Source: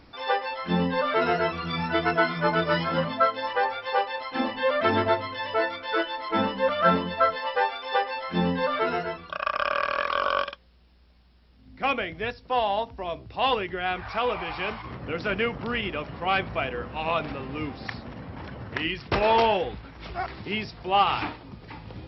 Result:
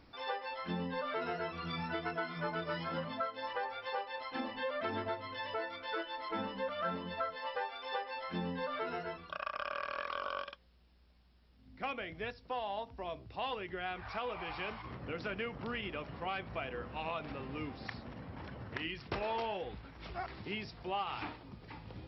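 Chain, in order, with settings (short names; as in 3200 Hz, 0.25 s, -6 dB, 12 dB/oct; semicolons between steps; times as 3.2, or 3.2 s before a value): compressor 3:1, threshold -28 dBFS, peak gain reduction 10 dB; gain -8 dB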